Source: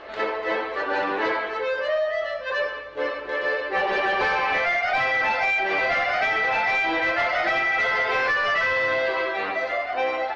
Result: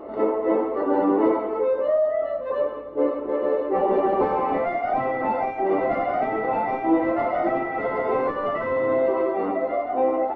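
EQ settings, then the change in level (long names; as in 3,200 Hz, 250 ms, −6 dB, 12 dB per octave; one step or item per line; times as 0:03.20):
Savitzky-Golay smoothing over 65 samples
parametric band 270 Hz +14.5 dB 1.3 octaves
0.0 dB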